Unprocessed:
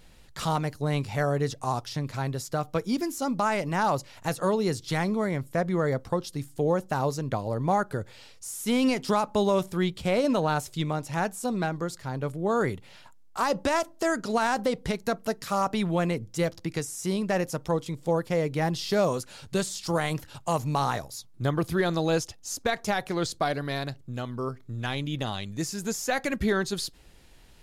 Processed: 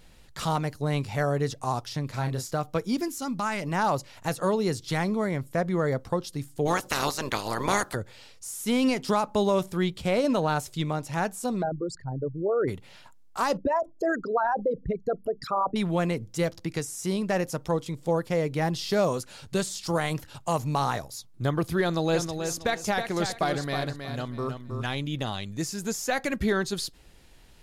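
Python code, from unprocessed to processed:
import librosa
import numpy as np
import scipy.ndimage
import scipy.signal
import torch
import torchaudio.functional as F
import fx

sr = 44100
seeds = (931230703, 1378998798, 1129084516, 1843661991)

y = fx.doubler(x, sr, ms=31.0, db=-6.5, at=(2.1, 2.56))
y = fx.peak_eq(y, sr, hz=550.0, db=-8.5, octaves=1.4, at=(3.08, 3.62))
y = fx.spec_clip(y, sr, under_db=27, at=(6.65, 7.94), fade=0.02)
y = fx.envelope_sharpen(y, sr, power=3.0, at=(11.61, 12.67), fade=0.02)
y = fx.envelope_sharpen(y, sr, power=3.0, at=(13.57, 15.76))
y = fx.echo_feedback(y, sr, ms=319, feedback_pct=25, wet_db=-7.0, at=(22.13, 24.83), fade=0.02)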